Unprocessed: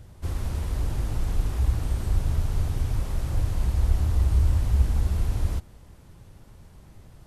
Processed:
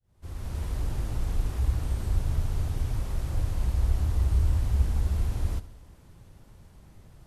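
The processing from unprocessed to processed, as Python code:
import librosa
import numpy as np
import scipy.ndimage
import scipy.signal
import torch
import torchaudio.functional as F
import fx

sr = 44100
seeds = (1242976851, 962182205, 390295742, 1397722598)

p1 = fx.fade_in_head(x, sr, length_s=0.64)
p2 = p1 + fx.echo_feedback(p1, sr, ms=69, feedback_pct=59, wet_db=-17, dry=0)
y = F.gain(torch.from_numpy(p2), -3.0).numpy()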